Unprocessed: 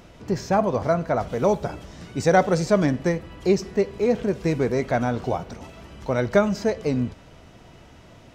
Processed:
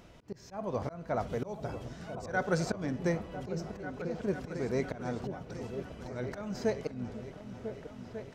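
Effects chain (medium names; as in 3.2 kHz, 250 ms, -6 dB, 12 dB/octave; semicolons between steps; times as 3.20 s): slow attack 312 ms; 1.90–2.75 s: peaking EQ 1.5 kHz +10 dB 0.22 oct; delay with an opening low-pass 498 ms, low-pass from 200 Hz, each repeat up 2 oct, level -6 dB; trim -7.5 dB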